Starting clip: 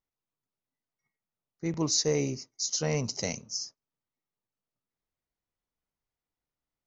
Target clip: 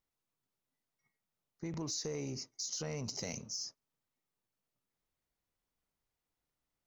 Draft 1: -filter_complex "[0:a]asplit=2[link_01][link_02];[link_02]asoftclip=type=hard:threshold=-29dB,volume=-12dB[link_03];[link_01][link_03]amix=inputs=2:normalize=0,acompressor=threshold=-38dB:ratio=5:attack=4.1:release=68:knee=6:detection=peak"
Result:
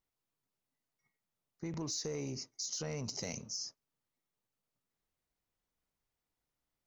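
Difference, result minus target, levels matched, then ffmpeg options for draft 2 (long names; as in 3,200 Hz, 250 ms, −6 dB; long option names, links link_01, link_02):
hard clipping: distortion −5 dB
-filter_complex "[0:a]asplit=2[link_01][link_02];[link_02]asoftclip=type=hard:threshold=-37.5dB,volume=-12dB[link_03];[link_01][link_03]amix=inputs=2:normalize=0,acompressor=threshold=-38dB:ratio=5:attack=4.1:release=68:knee=6:detection=peak"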